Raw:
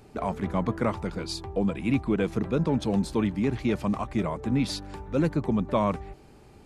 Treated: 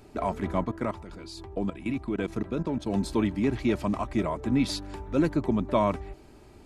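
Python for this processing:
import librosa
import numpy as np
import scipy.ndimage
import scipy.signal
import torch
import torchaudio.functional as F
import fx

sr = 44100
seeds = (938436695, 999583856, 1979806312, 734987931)

y = x + 0.37 * np.pad(x, (int(3.1 * sr / 1000.0), 0))[:len(x)]
y = fx.level_steps(y, sr, step_db=14, at=(0.64, 2.95))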